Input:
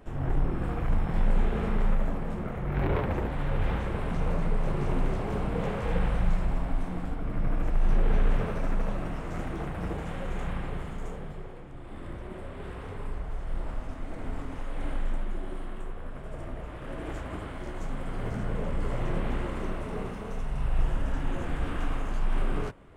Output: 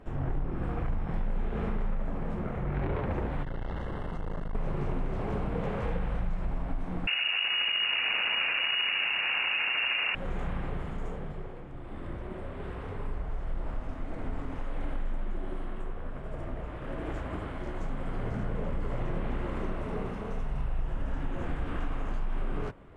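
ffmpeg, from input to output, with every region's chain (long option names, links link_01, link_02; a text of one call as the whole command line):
ffmpeg -i in.wav -filter_complex "[0:a]asettb=1/sr,asplit=3[link_01][link_02][link_03];[link_01]atrim=end=3.434[link_04];[link_02]atrim=start=3.43:end=4.55,asetpts=PTS-STARTPTS,afade=type=in:duration=0.004:curve=qsin,afade=type=out:start_time=1.116:duration=0.004:curve=qsin,aeval=exprs='(tanh(39.8*val(0)+0.5)-tanh(0.5))/39.8':channel_layout=same,asuperstop=centerf=2400:order=12:qfactor=5.4[link_05];[link_03]atrim=start=4.546[link_06];[link_04][link_05]acrossfade=duration=0.004:curve1=hsin:curve2=qsin[link_07];[link_07][link_06]acrossfade=duration=0.004:curve1=qsin:curve2=hsin,asettb=1/sr,asplit=3[link_08][link_09][link_10];[link_08]atrim=end=7.074[link_11];[link_09]atrim=start=7.07:end=10.15,asetpts=PTS-STARTPTS,afade=type=in:duration=0.004:curve=qsin,afade=type=out:start_time=3.076:duration=0.004:curve=qsin,highpass=frequency=66:poles=1,aeval=exprs='0.141*sin(PI/2*3.98*val(0)/0.141)':channel_layout=same,lowpass=frequency=2500:width_type=q:width=0.5098,lowpass=frequency=2500:width_type=q:width=0.6013,lowpass=frequency=2500:width_type=q:width=0.9,lowpass=frequency=2500:width_type=q:width=2.563,afreqshift=-2900[link_12];[link_10]atrim=start=10.146[link_13];[link_11][link_12]acrossfade=duration=0.004:curve1=hsin:curve2=qsin[link_14];[link_14][link_13]acrossfade=duration=0.004:curve1=qsin:curve2=hsin,lowpass=frequency=3100:poles=1,acompressor=threshold=-28dB:ratio=4,volume=1dB" out.wav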